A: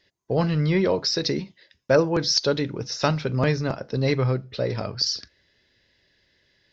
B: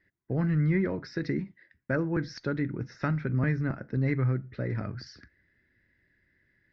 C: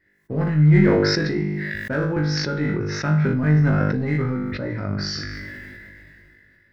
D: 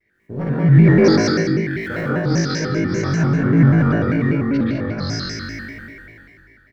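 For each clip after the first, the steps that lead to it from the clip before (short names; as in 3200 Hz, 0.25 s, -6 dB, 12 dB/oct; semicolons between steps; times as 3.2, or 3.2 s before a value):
EQ curve 2000 Hz 0 dB, 3000 Hz -21 dB, 7100 Hz -25 dB; in parallel at +1 dB: compressor, threshold -22 dBFS, peak gain reduction 9 dB; on the sum: band shelf 690 Hz -10.5 dB; gain -7.5 dB
in parallel at -7.5 dB: overloaded stage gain 26.5 dB; on the sum: flutter echo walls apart 3.4 m, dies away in 0.48 s; sustainer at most 20 dB/s
on a send: loudspeakers at several distances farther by 23 m -9 dB, 72 m -11 dB; on the sum: plate-style reverb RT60 0.64 s, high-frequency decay 0.55×, pre-delay 0.115 s, DRR -3.5 dB; shaped vibrato square 5.1 Hz, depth 160 cents; gain -3.5 dB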